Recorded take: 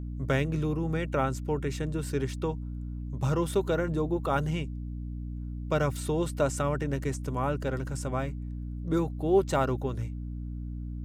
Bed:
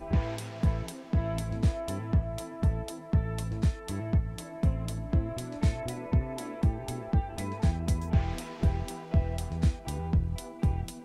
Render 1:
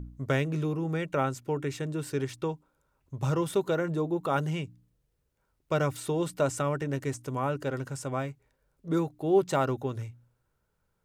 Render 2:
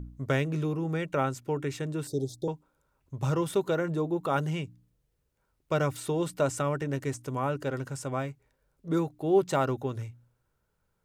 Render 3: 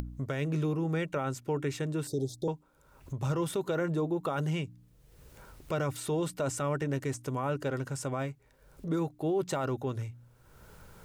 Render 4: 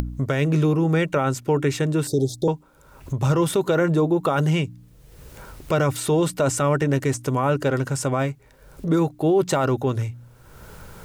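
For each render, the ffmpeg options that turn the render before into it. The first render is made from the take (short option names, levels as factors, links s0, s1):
-af "bandreject=f=60:t=h:w=4,bandreject=f=120:t=h:w=4,bandreject=f=180:t=h:w=4,bandreject=f=240:t=h:w=4,bandreject=f=300:t=h:w=4"
-filter_complex "[0:a]asettb=1/sr,asplit=3[s0][s1][s2];[s0]atrim=end=2.074[s3];[s1]atrim=start=2.07:end=2.48,asetpts=PTS-STARTPTS,afade=t=in:d=0.004:c=qsin,afade=t=out:st=0.406:d=0.004:c=qsin,asuperstop=centerf=1700:order=20:qfactor=0.61[s4];[s2]atrim=start=2.476[s5];[s3][s4]acrossfade=d=0.004:c1=hsin:c2=qsin[s6];[s6][s5]acrossfade=d=0.004:c1=qsin:c2=hsin"
-af "acompressor=mode=upward:threshold=0.0251:ratio=2.5,alimiter=limit=0.075:level=0:latency=1:release=16"
-af "volume=3.55"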